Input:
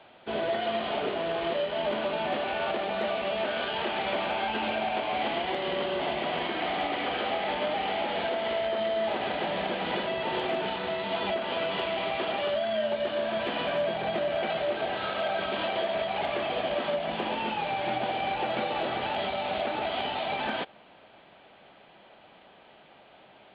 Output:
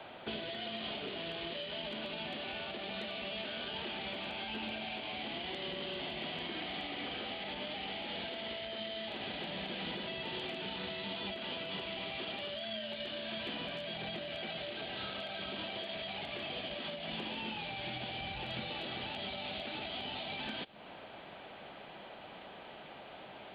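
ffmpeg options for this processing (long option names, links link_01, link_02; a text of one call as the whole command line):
ffmpeg -i in.wav -filter_complex "[0:a]asettb=1/sr,asplit=3[link_01][link_02][link_03];[link_01]atrim=end=17.524[link_04];[link_02]atrim=start=17.52:end=18.7,asetpts=PTS-STARTPTS,afade=type=in:duration=0.004:curve=qsin,afade=type=out:start_time=1.176:duration=0.004:curve=qsin,asubboost=boost=9:cutoff=140[link_05];[link_03]atrim=start=18.696[link_06];[link_04][link_05]acrossfade=duration=0.004:curve1=hsin:curve2=qsin[link_07];[link_07][link_06]acrossfade=duration=0.004:curve1=qsin:curve2=hsin,acrossover=split=1700[link_08][link_09];[link_08]acompressor=threshold=-40dB:ratio=6[link_10];[link_09]alimiter=level_in=11.5dB:limit=-24dB:level=0:latency=1:release=285,volume=-11.5dB[link_11];[link_10][link_11]amix=inputs=2:normalize=0,acrossover=split=310|3000[link_12][link_13][link_14];[link_13]acompressor=threshold=-53dB:ratio=3[link_15];[link_12][link_15][link_14]amix=inputs=3:normalize=0,volume=5.5dB" out.wav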